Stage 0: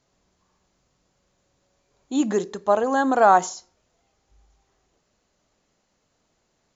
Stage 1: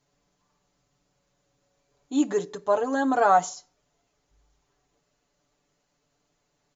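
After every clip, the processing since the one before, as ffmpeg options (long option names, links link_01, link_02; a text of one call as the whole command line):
ffmpeg -i in.wav -af "aecho=1:1:6.9:0.8,volume=-5.5dB" out.wav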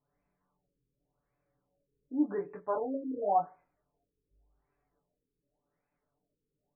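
ffmpeg -i in.wav -af "flanger=delay=20:depth=4.5:speed=0.45,afftfilt=real='re*lt(b*sr/1024,500*pow(2700/500,0.5+0.5*sin(2*PI*0.89*pts/sr)))':imag='im*lt(b*sr/1024,500*pow(2700/500,0.5+0.5*sin(2*PI*0.89*pts/sr)))':win_size=1024:overlap=0.75,volume=-4.5dB" out.wav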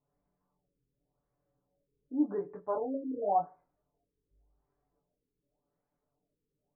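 ffmpeg -i in.wav -af "lowpass=1100" out.wav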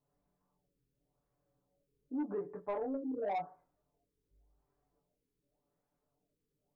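ffmpeg -i in.wav -af "asoftclip=type=tanh:threshold=-27dB,acompressor=threshold=-33dB:ratio=6" out.wav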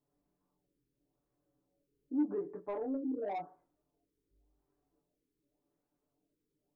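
ffmpeg -i in.wav -af "equalizer=frequency=320:width_type=o:width=0.62:gain=10.5,volume=-3.5dB" out.wav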